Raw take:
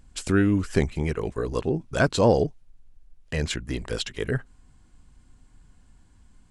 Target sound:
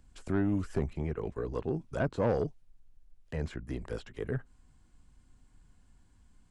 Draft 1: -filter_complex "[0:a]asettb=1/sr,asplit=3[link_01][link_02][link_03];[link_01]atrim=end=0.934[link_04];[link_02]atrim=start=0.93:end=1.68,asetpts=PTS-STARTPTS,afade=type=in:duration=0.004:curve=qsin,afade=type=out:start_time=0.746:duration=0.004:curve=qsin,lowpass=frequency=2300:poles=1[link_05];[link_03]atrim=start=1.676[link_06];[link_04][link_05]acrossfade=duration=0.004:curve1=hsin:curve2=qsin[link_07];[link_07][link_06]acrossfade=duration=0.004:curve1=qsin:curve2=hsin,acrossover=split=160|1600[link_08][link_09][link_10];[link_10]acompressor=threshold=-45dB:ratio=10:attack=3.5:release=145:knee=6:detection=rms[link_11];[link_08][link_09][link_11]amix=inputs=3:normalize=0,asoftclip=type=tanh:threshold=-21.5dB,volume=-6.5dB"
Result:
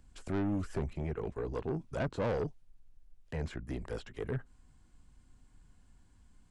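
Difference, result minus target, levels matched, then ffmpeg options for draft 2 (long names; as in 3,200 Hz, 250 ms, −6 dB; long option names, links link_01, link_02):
soft clipping: distortion +7 dB
-filter_complex "[0:a]asettb=1/sr,asplit=3[link_01][link_02][link_03];[link_01]atrim=end=0.934[link_04];[link_02]atrim=start=0.93:end=1.68,asetpts=PTS-STARTPTS,afade=type=in:duration=0.004:curve=qsin,afade=type=out:start_time=0.746:duration=0.004:curve=qsin,lowpass=frequency=2300:poles=1[link_05];[link_03]atrim=start=1.676[link_06];[link_04][link_05]acrossfade=duration=0.004:curve1=hsin:curve2=qsin[link_07];[link_07][link_06]acrossfade=duration=0.004:curve1=qsin:curve2=hsin,acrossover=split=160|1600[link_08][link_09][link_10];[link_10]acompressor=threshold=-45dB:ratio=10:attack=3.5:release=145:knee=6:detection=rms[link_11];[link_08][link_09][link_11]amix=inputs=3:normalize=0,asoftclip=type=tanh:threshold=-14dB,volume=-6.5dB"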